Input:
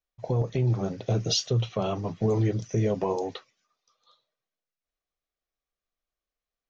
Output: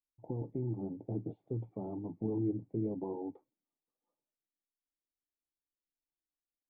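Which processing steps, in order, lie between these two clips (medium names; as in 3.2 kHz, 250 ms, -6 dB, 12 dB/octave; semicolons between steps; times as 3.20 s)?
cascade formant filter u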